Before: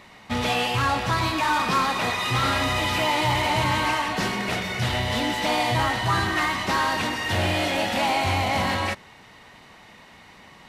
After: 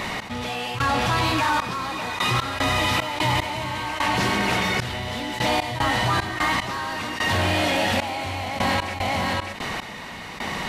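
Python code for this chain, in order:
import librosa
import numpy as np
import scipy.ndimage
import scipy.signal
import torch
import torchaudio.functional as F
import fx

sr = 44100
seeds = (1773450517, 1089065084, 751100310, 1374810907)

y = x + 10.0 ** (-8.0 / 20.0) * np.pad(x, (int(588 * sr / 1000.0), 0))[:len(x)]
y = fx.step_gate(y, sr, bpm=75, pattern='x...xxxx...x.xx.', floor_db=-24.0, edge_ms=4.5)
y = fx.env_flatten(y, sr, amount_pct=70)
y = y * librosa.db_to_amplitude(-1.0)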